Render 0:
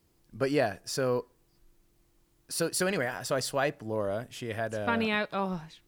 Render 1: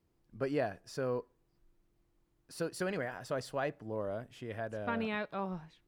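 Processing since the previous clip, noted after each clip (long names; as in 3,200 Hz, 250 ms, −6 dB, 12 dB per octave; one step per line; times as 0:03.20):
high-shelf EQ 3,500 Hz −11.5 dB
level −6 dB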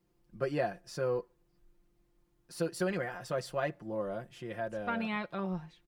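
comb filter 5.7 ms, depth 74%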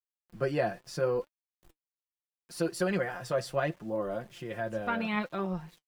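centre clipping without the shift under −58 dBFS
flanger 0.74 Hz, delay 2.5 ms, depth 6.8 ms, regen +62%
level +7.5 dB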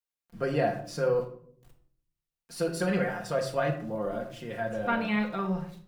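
convolution reverb RT60 0.55 s, pre-delay 4 ms, DRR 3 dB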